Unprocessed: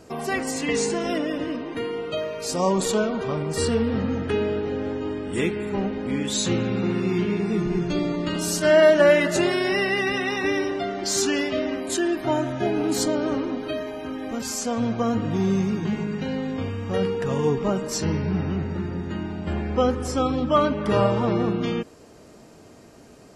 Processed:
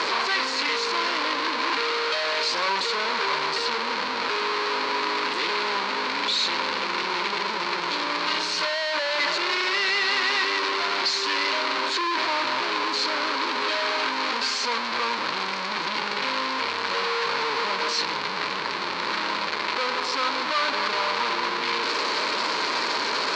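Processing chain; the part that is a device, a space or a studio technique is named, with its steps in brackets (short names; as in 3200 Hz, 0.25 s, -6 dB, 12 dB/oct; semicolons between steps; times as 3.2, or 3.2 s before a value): home computer beeper (infinite clipping; speaker cabinet 560–5000 Hz, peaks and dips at 710 Hz -10 dB, 1000 Hz +10 dB, 1500 Hz +3 dB, 2300 Hz +5 dB, 4300 Hz +10 dB)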